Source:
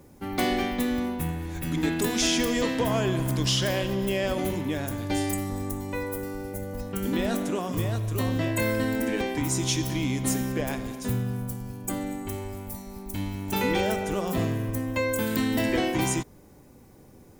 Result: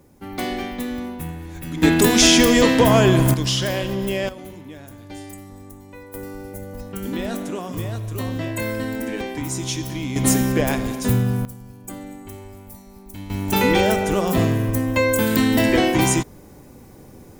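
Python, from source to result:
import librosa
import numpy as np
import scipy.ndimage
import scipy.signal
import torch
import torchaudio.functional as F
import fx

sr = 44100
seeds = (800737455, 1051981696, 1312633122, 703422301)

y = fx.gain(x, sr, db=fx.steps((0.0, -1.0), (1.82, 11.0), (3.34, 3.0), (4.29, -9.5), (6.14, 0.0), (10.16, 9.0), (11.45, -4.0), (13.3, 8.0)))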